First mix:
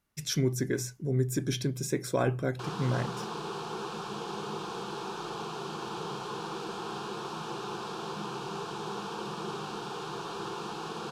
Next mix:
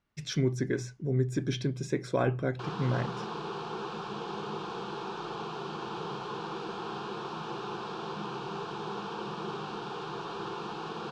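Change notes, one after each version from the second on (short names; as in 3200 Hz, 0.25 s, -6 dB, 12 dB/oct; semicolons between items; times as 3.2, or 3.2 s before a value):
master: add LPF 4200 Hz 12 dB/oct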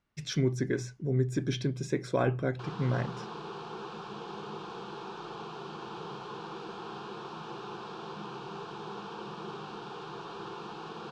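background -4.0 dB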